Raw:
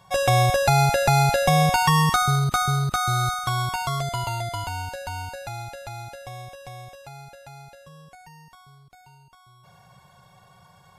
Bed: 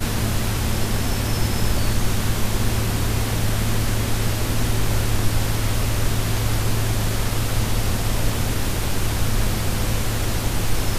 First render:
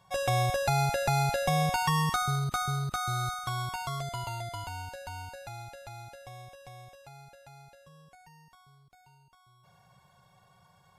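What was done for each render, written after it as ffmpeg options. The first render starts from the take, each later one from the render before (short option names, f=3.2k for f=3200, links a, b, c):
-af "volume=-8.5dB"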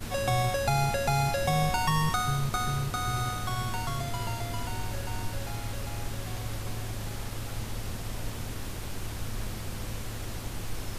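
-filter_complex "[1:a]volume=-14dB[a];[0:a][a]amix=inputs=2:normalize=0"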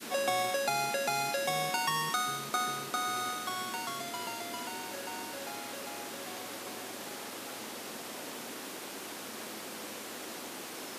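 -af "highpass=f=250:w=0.5412,highpass=f=250:w=1.3066,adynamicequalizer=threshold=0.00891:dfrequency=750:dqfactor=0.97:tfrequency=750:tqfactor=0.97:attack=5:release=100:ratio=0.375:range=2.5:mode=cutabove:tftype=bell"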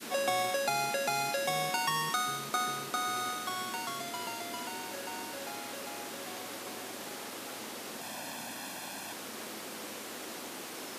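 -filter_complex "[0:a]asettb=1/sr,asplit=3[a][b][c];[a]atrim=end=8.014[d];[b]atrim=start=8.01:end=9.13,asetpts=PTS-STARTPTS,afade=t=in:d=0.004:c=qsin,afade=t=out:st=1.116:d=0.004:c=qsin,aecho=1:1:1.2:0.65,atrim=end_sample=49392[e];[c]atrim=start=9.126[f];[d][e]acrossfade=d=0.004:c1=hsin:c2=qsin[g];[g][f]acrossfade=d=0.004:c1=qsin:c2=hsin"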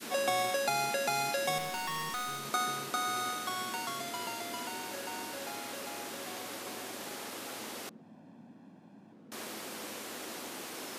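-filter_complex "[0:a]asettb=1/sr,asplit=3[a][b][c];[a]atrim=end=1.584[d];[b]atrim=start=1.58:end=2.45,asetpts=PTS-STARTPTS,afade=t=in:d=0.004:c=qsin,afade=t=out:st=0.866:d=0.004:c=qsin,aeval=exprs='(tanh(39.8*val(0)+0.3)-tanh(0.3))/39.8':c=same[e];[c]atrim=start=2.446[f];[d][e]acrossfade=d=0.004:c1=hsin:c2=qsin[g];[g][f]acrossfade=d=0.004:c1=qsin:c2=hsin,asettb=1/sr,asplit=3[h][i][j];[h]atrim=end=7.894[k];[i]atrim=start=7.89:end=9.32,asetpts=PTS-STARTPTS,afade=t=in:d=0.004:c=qsin,afade=t=out:st=1.426:d=0.004:c=qsin,bandpass=f=180:t=q:w=2[l];[j]atrim=start=9.316[m];[k][l]acrossfade=d=0.004:c1=hsin:c2=qsin[n];[n][m]acrossfade=d=0.004:c1=qsin:c2=hsin"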